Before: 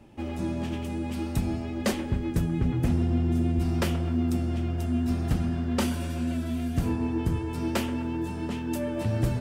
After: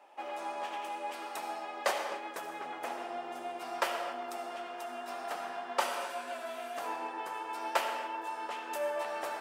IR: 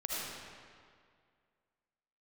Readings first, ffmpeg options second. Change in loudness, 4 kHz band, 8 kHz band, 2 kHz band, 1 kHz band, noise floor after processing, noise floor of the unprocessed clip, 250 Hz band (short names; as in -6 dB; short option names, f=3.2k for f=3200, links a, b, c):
-9.0 dB, -2.0 dB, -4.5 dB, +1.0 dB, +5.0 dB, -44 dBFS, -33 dBFS, -23.0 dB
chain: -filter_complex "[0:a]highpass=f=740:w=0.5412,highpass=f=740:w=1.3066,tiltshelf=f=1.3k:g=8.5,asplit=2[a][b];[1:a]atrim=start_sample=2205,afade=t=out:st=0.33:d=0.01,atrim=end_sample=14994[c];[b][c]afir=irnorm=-1:irlink=0,volume=-5dB[d];[a][d]amix=inputs=2:normalize=0"